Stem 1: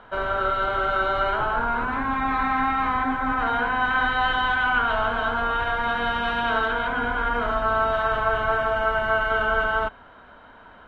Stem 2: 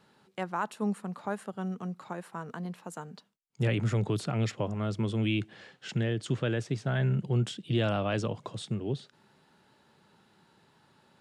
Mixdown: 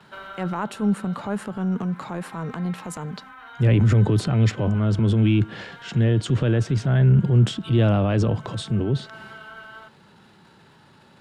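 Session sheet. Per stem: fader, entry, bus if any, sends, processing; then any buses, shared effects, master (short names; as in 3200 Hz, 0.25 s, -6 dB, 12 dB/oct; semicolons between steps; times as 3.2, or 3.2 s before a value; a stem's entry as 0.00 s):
-17.0 dB, 0.00 s, no send, tilt +3.5 dB/oct; auto duck -11 dB, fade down 1.00 s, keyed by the second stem
+2.5 dB, 0.00 s, no send, gate with hold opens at -57 dBFS; high shelf 4500 Hz -7 dB; transient shaper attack -5 dB, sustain +7 dB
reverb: off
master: low shelf 380 Hz +11 dB; mismatched tape noise reduction encoder only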